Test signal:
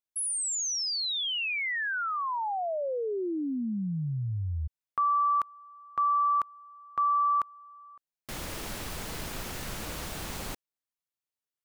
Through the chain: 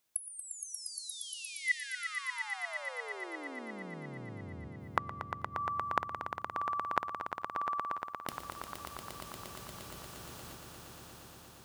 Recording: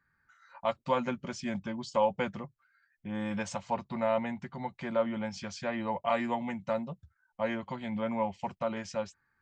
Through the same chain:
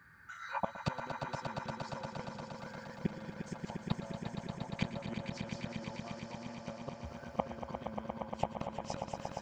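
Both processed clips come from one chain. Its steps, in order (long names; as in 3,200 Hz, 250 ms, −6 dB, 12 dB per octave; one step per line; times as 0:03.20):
high-pass filter 53 Hz 24 dB per octave
dynamic equaliser 2,100 Hz, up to −7 dB, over −55 dBFS, Q 4.2
downward compressor 10 to 1, threshold −34 dBFS
gate with flip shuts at −34 dBFS, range −27 dB
echo that builds up and dies away 117 ms, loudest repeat 5, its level −8 dB
level +14.5 dB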